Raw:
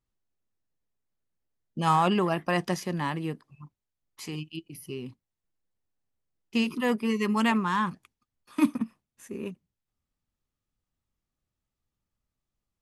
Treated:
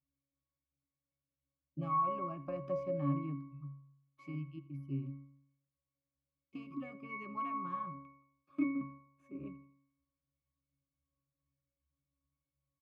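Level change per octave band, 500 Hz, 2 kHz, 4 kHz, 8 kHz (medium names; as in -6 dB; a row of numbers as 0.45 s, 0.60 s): -10.5 dB, -18.0 dB, under -30 dB, under -30 dB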